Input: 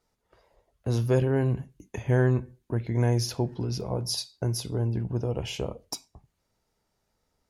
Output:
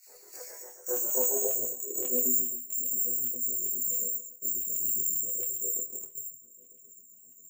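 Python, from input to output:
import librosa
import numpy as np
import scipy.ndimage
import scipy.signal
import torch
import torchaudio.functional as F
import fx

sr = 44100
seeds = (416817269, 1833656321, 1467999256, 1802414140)

p1 = fx.bin_compress(x, sr, power=0.6)
p2 = p1 + fx.echo_single(p1, sr, ms=78, db=-4.0, dry=0)
p3 = fx.filter_sweep_lowpass(p2, sr, from_hz=2900.0, to_hz=200.0, start_s=0.27, end_s=2.51, q=3.1)
p4 = fx.peak_eq(p3, sr, hz=520.0, db=3.0, octaves=0.77)
p5 = (np.kron(scipy.signal.resample_poly(p4, 1, 6), np.eye(6)[0]) * 6)[:len(p4)]
p6 = scipy.signal.sosfilt(scipy.signal.cheby1(2, 1.0, [2200.0, 4400.0], 'bandstop', fs=sr, output='sos'), p5)
p7 = fx.low_shelf(p6, sr, hz=160.0, db=-4.0)
p8 = fx.over_compress(p7, sr, threshold_db=-23.0, ratio=-1.0)
p9 = p7 + (p8 * 10.0 ** (-2.0 / 20.0))
p10 = fx.filter_lfo_highpass(p9, sr, shape='square', hz=7.4, low_hz=440.0, high_hz=2900.0, q=2.3)
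p11 = fx.resonator_bank(p10, sr, root=40, chord='fifth', decay_s=0.22)
p12 = fx.chorus_voices(p11, sr, voices=2, hz=0.3, base_ms=25, depth_ms=2.9, mix_pct=65)
y = p12 * 10.0 ** (-5.0 / 20.0)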